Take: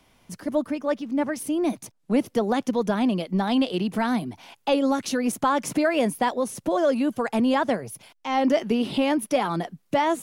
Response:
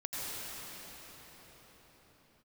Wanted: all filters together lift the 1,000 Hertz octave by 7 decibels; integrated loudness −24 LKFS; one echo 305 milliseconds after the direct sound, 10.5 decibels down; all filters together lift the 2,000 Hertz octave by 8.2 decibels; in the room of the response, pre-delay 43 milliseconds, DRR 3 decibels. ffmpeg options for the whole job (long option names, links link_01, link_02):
-filter_complex "[0:a]equalizer=frequency=1000:width_type=o:gain=7,equalizer=frequency=2000:width_type=o:gain=8,aecho=1:1:305:0.299,asplit=2[link_01][link_02];[1:a]atrim=start_sample=2205,adelay=43[link_03];[link_02][link_03]afir=irnorm=-1:irlink=0,volume=-7.5dB[link_04];[link_01][link_04]amix=inputs=2:normalize=0,volume=-5dB"